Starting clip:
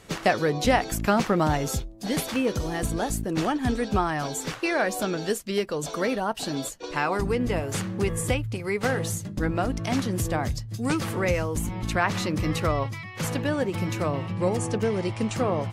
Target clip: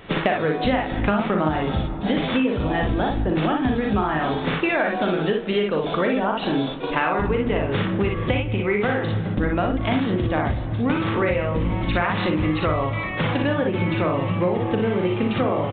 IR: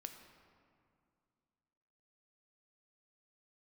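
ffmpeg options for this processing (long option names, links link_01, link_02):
-filter_complex "[0:a]bandreject=frequency=50:width_type=h:width=6,bandreject=frequency=100:width_type=h:width=6,bandreject=frequency=150:width_type=h:width=6,asplit=2[link_01][link_02];[link_02]aecho=0:1:39|58:0.501|0.668[link_03];[link_01][link_03]amix=inputs=2:normalize=0,aresample=8000,aresample=44100,asplit=2[link_04][link_05];[1:a]atrim=start_sample=2205[link_06];[link_05][link_06]afir=irnorm=-1:irlink=0,volume=1.5dB[link_07];[link_04][link_07]amix=inputs=2:normalize=0,acompressor=threshold=-22dB:ratio=6,volume=4dB"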